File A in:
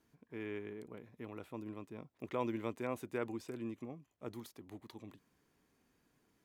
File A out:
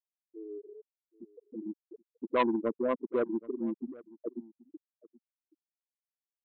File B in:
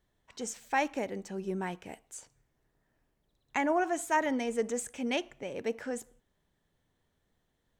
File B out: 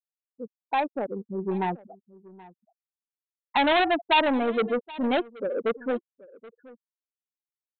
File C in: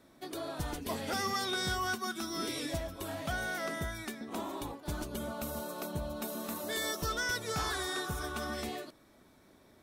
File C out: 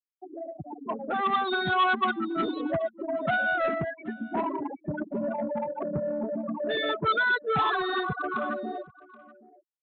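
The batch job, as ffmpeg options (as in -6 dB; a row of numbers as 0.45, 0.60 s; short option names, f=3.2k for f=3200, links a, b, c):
-filter_complex "[0:a]highpass=f=120:w=0.5412,highpass=f=120:w=1.3066,afftfilt=real='re*gte(hypot(re,im),0.0447)':imag='im*gte(hypot(re,im),0.0447)':win_size=1024:overlap=0.75,highshelf=f=1.6k:t=q:w=1.5:g=-13,dynaudnorm=f=130:g=21:m=10dB,aresample=8000,asoftclip=type=tanh:threshold=-21.5dB,aresample=44100,crystalizer=i=8.5:c=0,asplit=2[a][b];[b]aecho=0:1:777:0.0891[c];[a][c]amix=inputs=2:normalize=0"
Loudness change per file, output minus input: +10.0, +7.0, +8.0 LU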